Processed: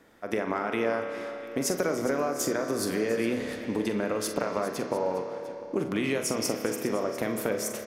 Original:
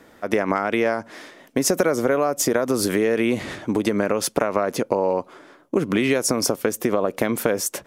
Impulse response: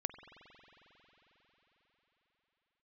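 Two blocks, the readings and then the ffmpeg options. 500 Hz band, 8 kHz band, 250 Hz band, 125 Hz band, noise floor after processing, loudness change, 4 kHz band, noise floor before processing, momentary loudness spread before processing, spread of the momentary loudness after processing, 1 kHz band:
−7.0 dB, −8.0 dB, −7.0 dB, −7.5 dB, −40 dBFS, −7.5 dB, −7.5 dB, −52 dBFS, 6 LU, 5 LU, −7.0 dB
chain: -filter_complex "[0:a]aecho=1:1:44|61|408|700:0.316|0.119|0.188|0.133[link_01];[1:a]atrim=start_sample=2205,asetrate=70560,aresample=44100[link_02];[link_01][link_02]afir=irnorm=-1:irlink=0,volume=-3.5dB"

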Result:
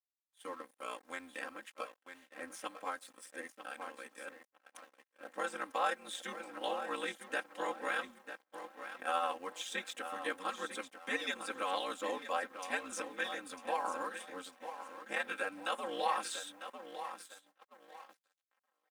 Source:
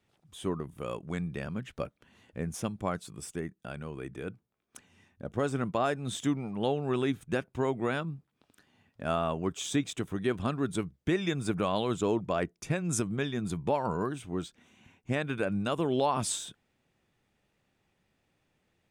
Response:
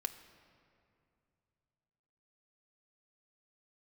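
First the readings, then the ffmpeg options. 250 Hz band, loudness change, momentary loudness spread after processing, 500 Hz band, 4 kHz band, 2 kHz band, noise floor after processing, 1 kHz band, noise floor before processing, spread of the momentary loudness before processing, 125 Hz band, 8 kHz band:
−17.5 dB, −7.5 dB, 15 LU, −9.5 dB, −2.5 dB, +1.0 dB, below −85 dBFS, −2.0 dB, −77 dBFS, 11 LU, below −30 dB, −8.0 dB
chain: -filter_complex "[0:a]asplit=2[link_01][link_02];[link_02]adelay=948,lowpass=frequency=3200:poles=1,volume=-9dB,asplit=2[link_03][link_04];[link_04]adelay=948,lowpass=frequency=3200:poles=1,volume=0.36,asplit=2[link_05][link_06];[link_06]adelay=948,lowpass=frequency=3200:poles=1,volume=0.36,asplit=2[link_07][link_08];[link_08]adelay=948,lowpass=frequency=3200:poles=1,volume=0.36[link_09];[link_01][link_03][link_05][link_07][link_09]amix=inputs=5:normalize=0,acrossover=split=5300[link_10][link_11];[link_11]acompressor=threshold=-51dB:ratio=4:attack=1:release=60[link_12];[link_10][link_12]amix=inputs=2:normalize=0,aeval=exprs='sgn(val(0))*max(abs(val(0))-0.00251,0)':channel_layout=same,equalizer=frequency=9500:width=2.8:gain=8.5,aeval=exprs='val(0)*sin(2*PI*90*n/s)':channel_layout=same,acrusher=bits=11:mix=0:aa=0.000001,areverse,acompressor=mode=upward:threshold=-45dB:ratio=2.5,areverse,aecho=1:1:3.8:0.89,agate=range=-21dB:threshold=-48dB:ratio=16:detection=peak,highpass=710,equalizer=frequency=1700:width=2.9:gain=4.5,volume=-1.5dB"

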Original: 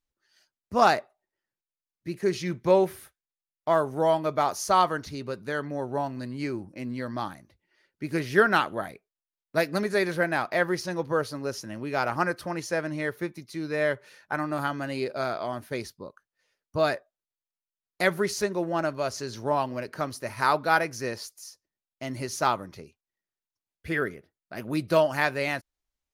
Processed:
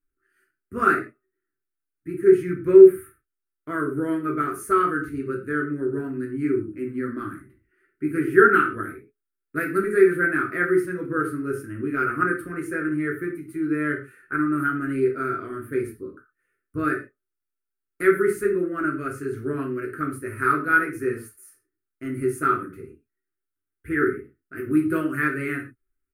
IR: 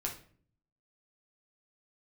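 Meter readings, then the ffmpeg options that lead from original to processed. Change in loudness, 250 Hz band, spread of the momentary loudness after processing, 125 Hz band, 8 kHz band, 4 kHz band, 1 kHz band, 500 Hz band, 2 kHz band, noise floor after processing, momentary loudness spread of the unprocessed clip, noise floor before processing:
+5.0 dB, +8.0 dB, 14 LU, +1.5 dB, −5.0 dB, below −15 dB, +0.5 dB, +5.5 dB, +5.0 dB, −84 dBFS, 14 LU, below −85 dBFS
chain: -filter_complex "[0:a]firequalizer=gain_entry='entry(120,0);entry(180,-5);entry(250,5);entry(380,8);entry(550,-14);entry(840,-28);entry(1300,7);entry(3800,-22);entry(5700,-24);entry(8600,1)':delay=0.05:min_phase=1[link_01];[1:a]atrim=start_sample=2205,afade=type=out:start_time=0.19:duration=0.01,atrim=end_sample=8820[link_02];[link_01][link_02]afir=irnorm=-1:irlink=0"

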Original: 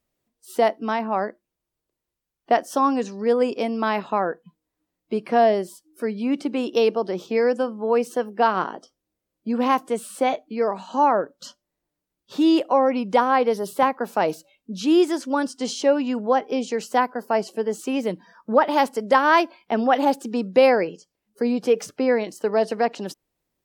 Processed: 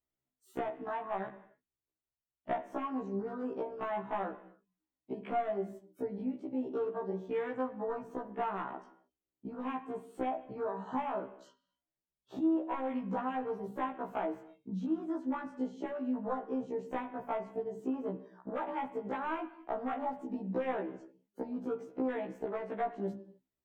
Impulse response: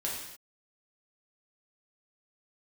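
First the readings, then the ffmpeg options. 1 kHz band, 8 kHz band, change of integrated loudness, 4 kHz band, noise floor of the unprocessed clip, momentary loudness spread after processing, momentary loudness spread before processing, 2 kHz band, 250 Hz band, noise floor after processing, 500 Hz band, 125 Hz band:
−15.5 dB, below −30 dB, −15.5 dB, below −25 dB, −84 dBFS, 8 LU, 11 LU, −18.0 dB, −12.5 dB, below −85 dBFS, −16.0 dB, −7.5 dB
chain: -filter_complex "[0:a]bandreject=frequency=50:width_type=h:width=6,bandreject=frequency=100:width_type=h:width=6,bandreject=frequency=150:width_type=h:width=6,bandreject=frequency=200:width_type=h:width=6,acrossover=split=470|2100[link_01][link_02][link_03];[link_01]acompressor=threshold=-25dB:ratio=4[link_04];[link_02]acompressor=threshold=-20dB:ratio=4[link_05];[link_03]acompressor=threshold=-44dB:ratio=4[link_06];[link_04][link_05][link_06]amix=inputs=3:normalize=0,asoftclip=type=hard:threshold=-17dB,equalizer=frequency=500:width_type=o:width=0.33:gain=-6,equalizer=frequency=5000:width_type=o:width=0.33:gain=-7,equalizer=frequency=10000:width_type=o:width=0.33:gain=-9,afwtdn=0.02,acompressor=threshold=-37dB:ratio=6,asplit=2[link_07][link_08];[1:a]atrim=start_sample=2205,lowpass=3100[link_09];[link_08][link_09]afir=irnorm=-1:irlink=0,volume=-11dB[link_10];[link_07][link_10]amix=inputs=2:normalize=0,afftfilt=real='re*1.73*eq(mod(b,3),0)':imag='im*1.73*eq(mod(b,3),0)':win_size=2048:overlap=0.75,volume=3.5dB"

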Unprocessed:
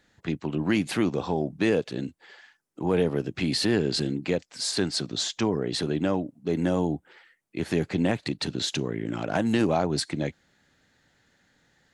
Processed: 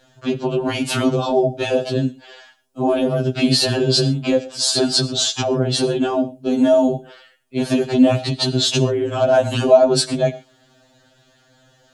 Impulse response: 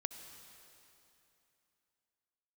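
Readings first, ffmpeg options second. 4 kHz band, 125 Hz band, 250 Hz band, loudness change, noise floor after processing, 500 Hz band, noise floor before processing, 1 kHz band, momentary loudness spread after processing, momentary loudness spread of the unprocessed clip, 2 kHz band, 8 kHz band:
+10.5 dB, +8.0 dB, +7.0 dB, +9.0 dB, −57 dBFS, +11.0 dB, −67 dBFS, +9.0 dB, 7 LU, 8 LU, +4.5 dB, +10.5 dB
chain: -filter_complex "[0:a]equalizer=frequency=630:width_type=o:width=0.33:gain=11,equalizer=frequency=2000:width_type=o:width=0.33:gain=-12,equalizer=frequency=3150:width_type=o:width=0.33:gain=3,asplit=2[link_01][link_02];[1:a]atrim=start_sample=2205,atrim=end_sample=6174[link_03];[link_02][link_03]afir=irnorm=-1:irlink=0,volume=4.5dB[link_04];[link_01][link_04]amix=inputs=2:normalize=0,alimiter=level_in=7.5dB:limit=-1dB:release=50:level=0:latency=1,afftfilt=real='re*2.45*eq(mod(b,6),0)':imag='im*2.45*eq(mod(b,6),0)':win_size=2048:overlap=0.75,volume=-2.5dB"

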